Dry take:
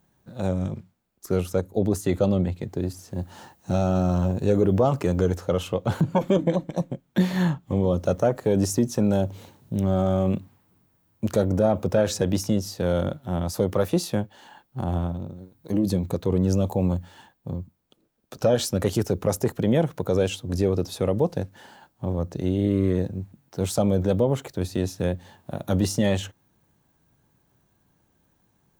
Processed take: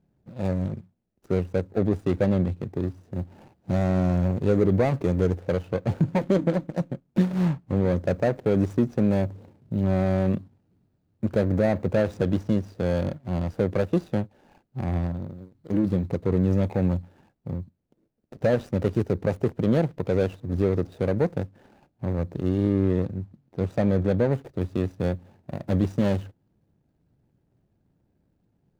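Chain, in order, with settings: median filter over 41 samples; high shelf 7400 Hz -3.5 dB, from 22.7 s -8.5 dB, from 24.33 s -2 dB

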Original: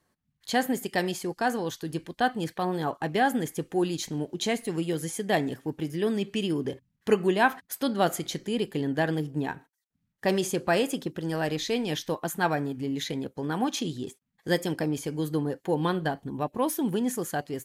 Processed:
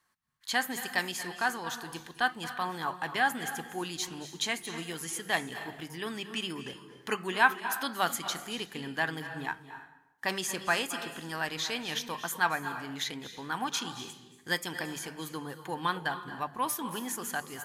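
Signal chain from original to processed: resonant low shelf 760 Hz -10.5 dB, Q 1.5; notches 50/100/150/200 Hz; on a send: reverb RT60 0.85 s, pre-delay 0.214 s, DRR 10 dB

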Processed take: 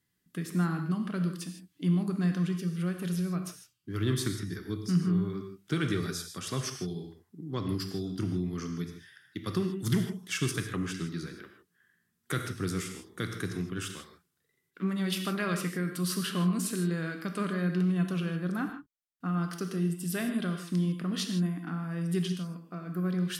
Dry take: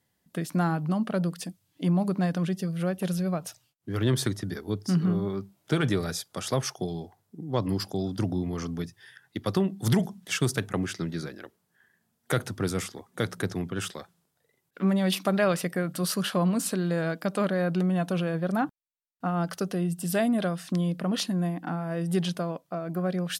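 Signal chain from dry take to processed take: spectral gain 22.27–22.67, 260–4400 Hz -8 dB; band shelf 670 Hz -11 dB 1.1 oct; non-linear reverb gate 0.18 s flat, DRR 4.5 dB; gain -4.5 dB

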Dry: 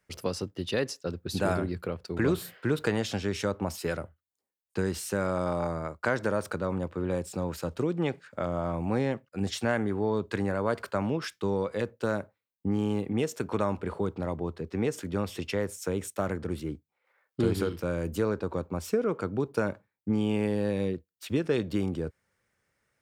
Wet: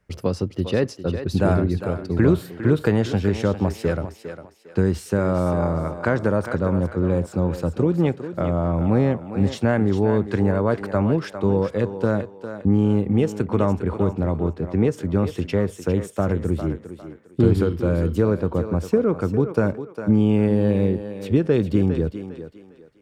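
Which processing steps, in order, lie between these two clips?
tilt -2.5 dB/oct; thinning echo 0.404 s, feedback 32%, high-pass 300 Hz, level -9 dB; gain +4.5 dB

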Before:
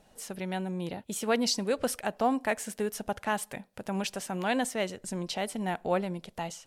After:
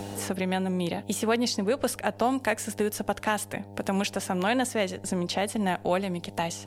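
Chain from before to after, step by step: buzz 100 Hz, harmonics 9, -53 dBFS -5 dB/oct; three-band squash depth 70%; gain +3.5 dB

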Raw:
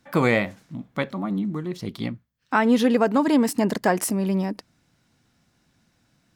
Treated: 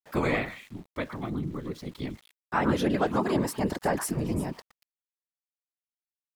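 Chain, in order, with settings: delay with a stepping band-pass 0.117 s, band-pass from 1300 Hz, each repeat 1.4 oct, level -6 dB; whisperiser; sample gate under -45.5 dBFS; gain -6.5 dB

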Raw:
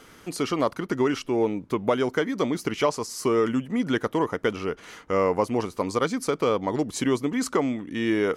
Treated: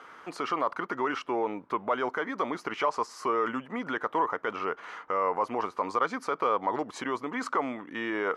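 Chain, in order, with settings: limiter -18.5 dBFS, peak gain reduction 9 dB; band-pass 1100 Hz, Q 1.6; gain +7.5 dB

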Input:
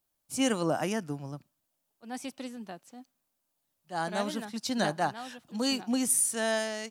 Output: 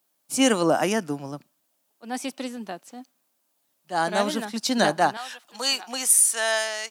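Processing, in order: HPF 210 Hz 12 dB/oct, from 5.17 s 810 Hz; gain +8.5 dB

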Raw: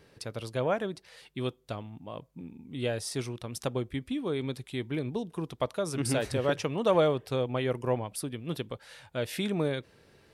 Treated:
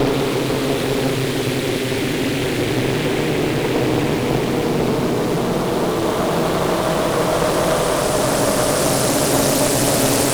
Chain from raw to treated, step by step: spectral swells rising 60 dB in 1.14 s; sample leveller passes 3; Paulstretch 6×, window 1.00 s, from 4.33; in parallel at -3.5 dB: bit-crush 5-bit; on the sum: one-sided clip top -21.5 dBFS; on a send: thin delay 70 ms, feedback 77%, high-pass 5300 Hz, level -4 dB; on the sum: Doppler distortion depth 0.57 ms

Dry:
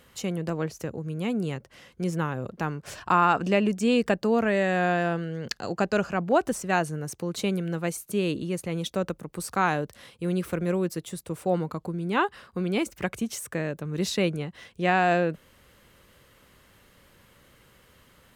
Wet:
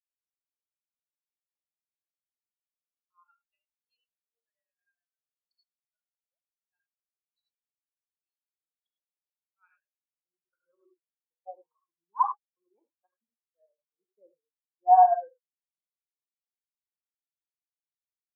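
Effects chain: band-pass sweep 4800 Hz -> 1000 Hz, 9.02–11; tremolo saw up 9.3 Hz, depth 50%; non-linear reverb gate 0.12 s rising, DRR 1 dB; spectral expander 4:1; gain +8 dB

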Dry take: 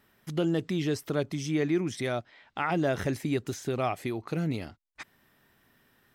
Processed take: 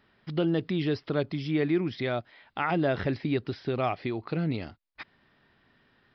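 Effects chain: downsampling 11025 Hz; gain +1 dB

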